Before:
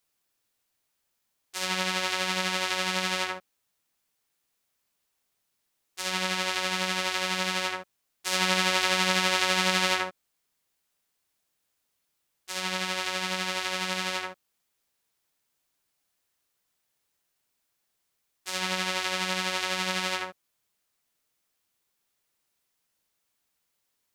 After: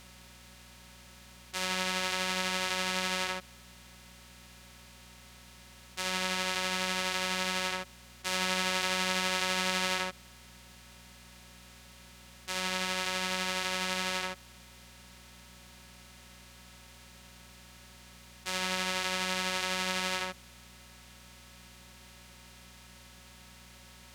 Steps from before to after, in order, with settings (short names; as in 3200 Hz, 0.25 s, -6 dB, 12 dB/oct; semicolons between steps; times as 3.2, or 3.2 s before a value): per-bin compression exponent 0.4; buzz 60 Hz, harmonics 4, -50 dBFS -4 dB/oct; gain -7.5 dB